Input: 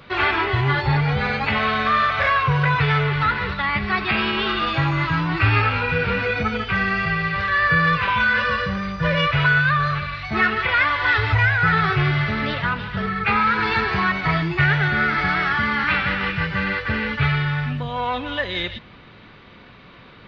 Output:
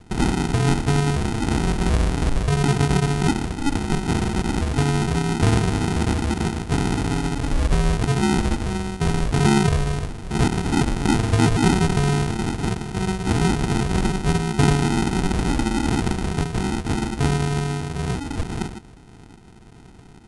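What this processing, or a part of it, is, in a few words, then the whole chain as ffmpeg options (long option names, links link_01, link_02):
crushed at another speed: -af "asetrate=88200,aresample=44100,acrusher=samples=39:mix=1:aa=0.000001,asetrate=22050,aresample=44100"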